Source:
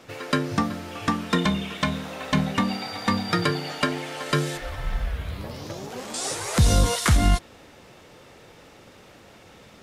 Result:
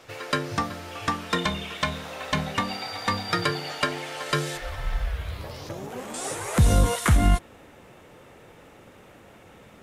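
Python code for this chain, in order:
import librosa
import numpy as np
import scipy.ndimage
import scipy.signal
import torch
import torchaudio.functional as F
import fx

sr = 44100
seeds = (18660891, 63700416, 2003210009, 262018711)

y = fx.peak_eq(x, sr, hz=fx.steps((0.0, 220.0), (5.69, 4800.0)), db=-10.0, octaves=1.0)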